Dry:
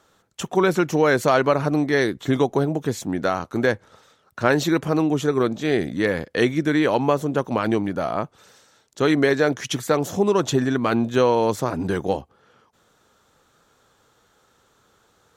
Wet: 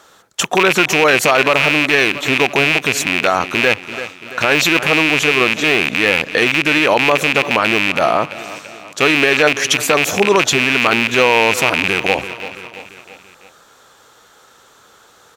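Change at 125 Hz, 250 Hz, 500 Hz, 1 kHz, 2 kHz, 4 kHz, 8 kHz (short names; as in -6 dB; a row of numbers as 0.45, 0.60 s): -1.0, +1.0, +4.0, +7.5, +15.0, +16.0, +13.0 dB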